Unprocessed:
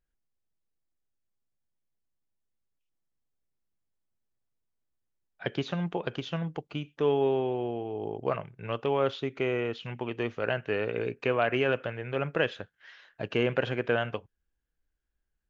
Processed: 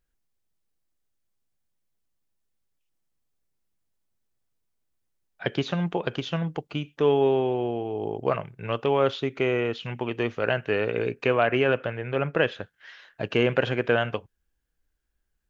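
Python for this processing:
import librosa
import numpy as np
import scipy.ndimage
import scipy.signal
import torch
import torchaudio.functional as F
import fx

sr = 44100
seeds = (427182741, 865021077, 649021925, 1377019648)

y = fx.high_shelf(x, sr, hz=4700.0, db=fx.steps((0.0, 2.0), (11.4, -6.0), (12.6, 2.0)))
y = y * 10.0 ** (4.5 / 20.0)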